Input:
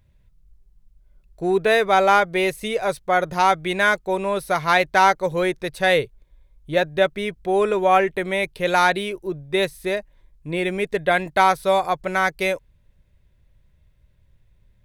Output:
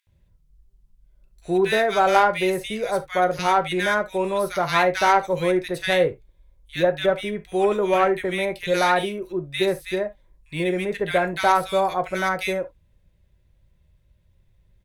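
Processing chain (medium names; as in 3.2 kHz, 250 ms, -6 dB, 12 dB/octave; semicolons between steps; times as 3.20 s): bands offset in time highs, lows 70 ms, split 1.7 kHz; Chebyshev shaper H 2 -10 dB, 4 -22 dB, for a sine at -4.5 dBFS; gated-style reverb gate 100 ms falling, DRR 8 dB; trim -1.5 dB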